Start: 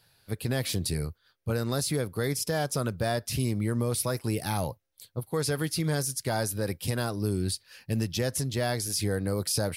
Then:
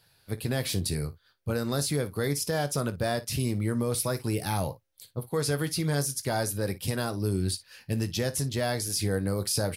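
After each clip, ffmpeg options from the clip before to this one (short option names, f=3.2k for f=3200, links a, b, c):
-af "aecho=1:1:21|56:0.224|0.141"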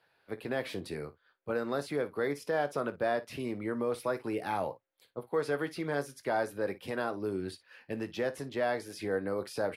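-filter_complex "[0:a]acrossover=split=260 2700:gain=0.1 1 0.0891[a][b][c];[a][b][c]amix=inputs=3:normalize=0"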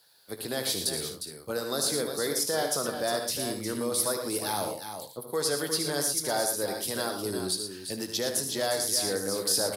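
-filter_complex "[0:a]aexciter=amount=10.3:drive=5.3:freq=3.7k,asplit=2[a][b];[b]aecho=0:1:76|114|357|414:0.376|0.355|0.376|0.133[c];[a][c]amix=inputs=2:normalize=0"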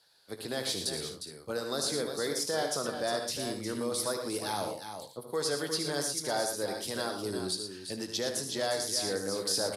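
-af "lowpass=8.7k,volume=-2.5dB"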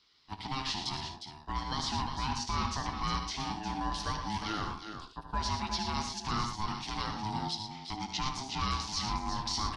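-af "highpass=160,equalizer=f=290:t=q:w=4:g=4,equalizer=f=1.5k:t=q:w=4:g=-7,equalizer=f=2.5k:t=q:w=4:g=9,lowpass=f=5.4k:w=0.5412,lowpass=f=5.4k:w=1.3066,aeval=exprs='val(0)*sin(2*PI*530*n/s)':c=same,volume=2dB"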